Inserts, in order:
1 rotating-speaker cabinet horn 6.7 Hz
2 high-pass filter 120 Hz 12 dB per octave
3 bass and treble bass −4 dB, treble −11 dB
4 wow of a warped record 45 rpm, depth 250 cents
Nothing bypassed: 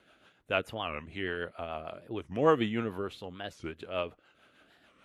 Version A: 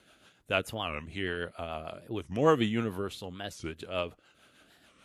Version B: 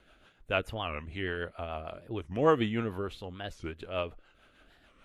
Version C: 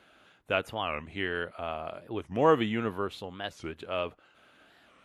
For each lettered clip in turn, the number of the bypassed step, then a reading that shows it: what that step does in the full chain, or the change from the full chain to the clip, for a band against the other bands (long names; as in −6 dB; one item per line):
3, 125 Hz band +2.5 dB
2, 125 Hz band +3.5 dB
1, change in integrated loudness +2.0 LU